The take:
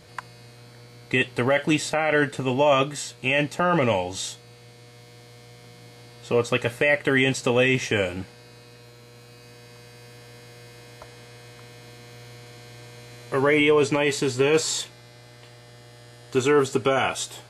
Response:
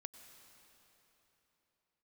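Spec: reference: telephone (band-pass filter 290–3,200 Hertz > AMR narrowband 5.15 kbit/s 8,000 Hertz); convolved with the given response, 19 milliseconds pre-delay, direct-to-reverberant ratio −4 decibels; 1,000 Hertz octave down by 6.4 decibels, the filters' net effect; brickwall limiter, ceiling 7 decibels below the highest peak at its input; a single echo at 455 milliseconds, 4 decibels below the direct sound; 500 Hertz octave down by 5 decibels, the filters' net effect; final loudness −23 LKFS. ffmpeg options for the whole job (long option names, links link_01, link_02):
-filter_complex "[0:a]equalizer=frequency=500:width_type=o:gain=-3.5,equalizer=frequency=1000:width_type=o:gain=-7.5,alimiter=limit=-16.5dB:level=0:latency=1,aecho=1:1:455:0.631,asplit=2[link_01][link_02];[1:a]atrim=start_sample=2205,adelay=19[link_03];[link_02][link_03]afir=irnorm=-1:irlink=0,volume=9dB[link_04];[link_01][link_04]amix=inputs=2:normalize=0,highpass=290,lowpass=3200,volume=3.5dB" -ar 8000 -c:a libopencore_amrnb -b:a 5150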